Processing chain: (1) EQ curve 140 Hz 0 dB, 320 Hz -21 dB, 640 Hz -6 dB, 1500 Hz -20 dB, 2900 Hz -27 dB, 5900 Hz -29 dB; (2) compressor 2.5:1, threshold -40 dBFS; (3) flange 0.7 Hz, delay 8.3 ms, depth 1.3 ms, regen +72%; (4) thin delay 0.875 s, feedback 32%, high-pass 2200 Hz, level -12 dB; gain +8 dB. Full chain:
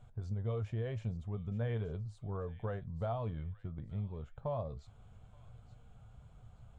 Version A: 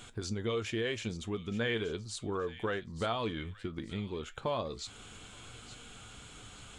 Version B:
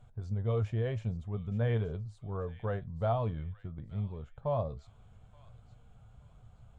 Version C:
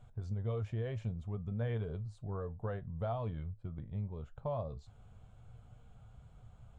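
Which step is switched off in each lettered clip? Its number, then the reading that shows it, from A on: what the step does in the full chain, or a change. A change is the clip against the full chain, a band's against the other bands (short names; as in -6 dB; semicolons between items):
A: 1, 125 Hz band -11.0 dB; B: 2, crest factor change +1.5 dB; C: 4, echo-to-direct -17.0 dB to none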